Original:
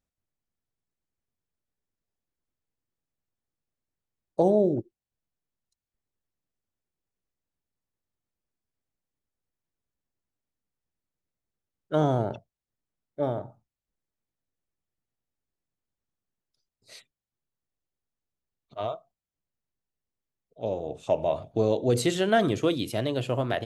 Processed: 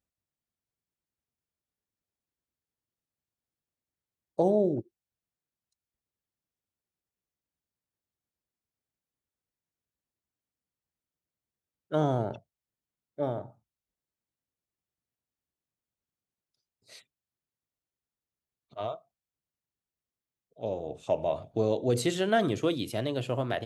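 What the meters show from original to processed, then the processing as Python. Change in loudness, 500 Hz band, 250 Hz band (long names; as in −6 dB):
−3.0 dB, −3.0 dB, −3.0 dB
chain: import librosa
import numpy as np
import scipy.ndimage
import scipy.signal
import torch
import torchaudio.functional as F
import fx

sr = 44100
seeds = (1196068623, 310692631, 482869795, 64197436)

y = scipy.signal.sosfilt(scipy.signal.butter(2, 49.0, 'highpass', fs=sr, output='sos'), x)
y = y * librosa.db_to_amplitude(-3.0)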